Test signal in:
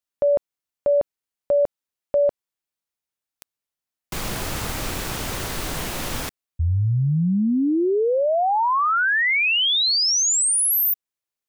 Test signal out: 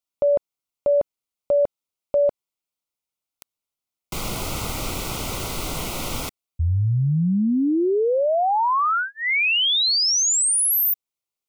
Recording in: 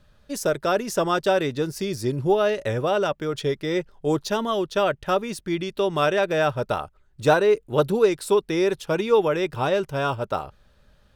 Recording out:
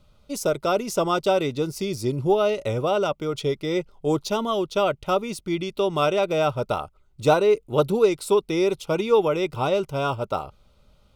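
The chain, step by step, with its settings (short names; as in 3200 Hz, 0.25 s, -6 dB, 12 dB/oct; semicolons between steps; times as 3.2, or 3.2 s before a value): Butterworth band-stop 1700 Hz, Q 3.2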